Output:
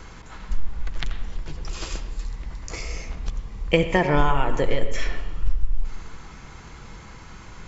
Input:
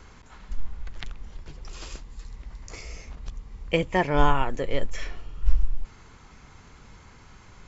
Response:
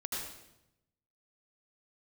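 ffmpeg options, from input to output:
-filter_complex "[0:a]acompressor=threshold=-22dB:ratio=5,asplit=2[a][b];[1:a]atrim=start_sample=2205,lowpass=3.8k,adelay=6[c];[b][c]afir=irnorm=-1:irlink=0,volume=-10dB[d];[a][d]amix=inputs=2:normalize=0,volume=7dB"

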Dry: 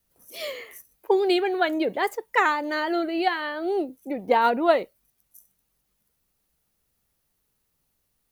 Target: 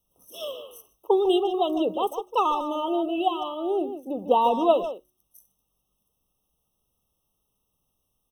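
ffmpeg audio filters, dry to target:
-filter_complex "[0:a]bandreject=f=72.95:t=h:w=4,bandreject=f=145.9:t=h:w=4,bandreject=f=218.85:t=h:w=4,bandreject=f=291.8:t=h:w=4,bandreject=f=364.75:t=h:w=4,asplit=2[a][b];[b]adelay=150,highpass=300,lowpass=3.4k,asoftclip=type=hard:threshold=-17dB,volume=-9dB[c];[a][c]amix=inputs=2:normalize=0,afftfilt=real='re*eq(mod(floor(b*sr/1024/1300),2),0)':imag='im*eq(mod(floor(b*sr/1024/1300),2),0)':win_size=1024:overlap=0.75"

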